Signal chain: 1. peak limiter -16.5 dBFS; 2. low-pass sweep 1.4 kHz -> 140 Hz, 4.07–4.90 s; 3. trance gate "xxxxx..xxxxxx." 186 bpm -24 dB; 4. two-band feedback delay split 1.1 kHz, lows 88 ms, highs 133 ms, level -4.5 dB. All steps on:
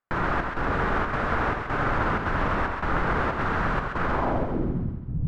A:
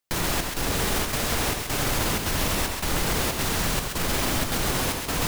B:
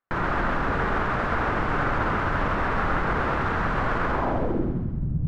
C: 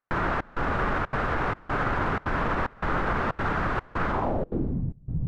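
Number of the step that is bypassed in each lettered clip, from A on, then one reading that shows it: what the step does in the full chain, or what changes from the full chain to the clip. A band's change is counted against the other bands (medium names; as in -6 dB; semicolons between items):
2, 4 kHz band +17.0 dB; 3, loudness change +1.0 LU; 4, echo-to-direct -3.0 dB to none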